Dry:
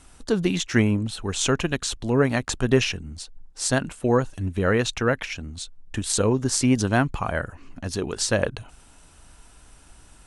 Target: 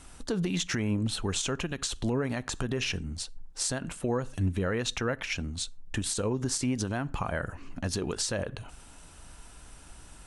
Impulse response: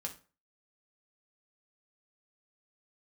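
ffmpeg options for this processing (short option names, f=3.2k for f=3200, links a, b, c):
-filter_complex "[0:a]asplit=2[a][b];[1:a]atrim=start_sample=2205,afade=t=out:st=0.2:d=0.01,atrim=end_sample=9261[c];[b][c]afir=irnorm=-1:irlink=0,volume=-14.5dB[d];[a][d]amix=inputs=2:normalize=0,acompressor=threshold=-22dB:ratio=6,alimiter=limit=-19.5dB:level=0:latency=1:release=108"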